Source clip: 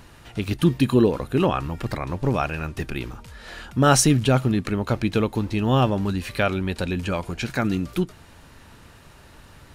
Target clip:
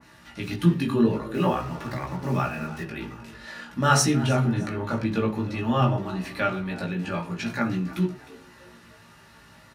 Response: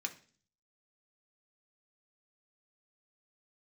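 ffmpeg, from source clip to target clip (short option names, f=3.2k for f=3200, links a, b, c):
-filter_complex "[0:a]asplit=4[a][b][c][d];[b]adelay=309,afreqshift=89,volume=-17.5dB[e];[c]adelay=618,afreqshift=178,volume=-26.1dB[f];[d]adelay=927,afreqshift=267,volume=-34.8dB[g];[a][e][f][g]amix=inputs=4:normalize=0,flanger=delay=16:depth=2:speed=0.49,asettb=1/sr,asplit=3[h][i][j];[h]atrim=end=1.344[k];[i]atrim=start=1.34:end=2.84,asetpts=PTS-STARTPTS,afade=t=in:d=0.004:c=qsin,afade=t=out:st=1.496:d=0.004:c=qsin,acrusher=bits=6:mix=0:aa=0.5[l];[j]atrim=start=2.836[m];[k][l]acrossfade=d=0.004:c1=hsin:c2=qsin[n];[n][m]acrossfade=d=0.004:c1=qsin:c2=hsin[o];[1:a]atrim=start_sample=2205,afade=t=out:st=0.16:d=0.01,atrim=end_sample=7497,asetrate=34398,aresample=44100[p];[o][p]afir=irnorm=-1:irlink=0,adynamicequalizer=threshold=0.00794:dfrequency=2000:dqfactor=0.7:tfrequency=2000:tqfactor=0.7:attack=5:release=100:ratio=0.375:range=3.5:mode=cutabove:tftype=highshelf"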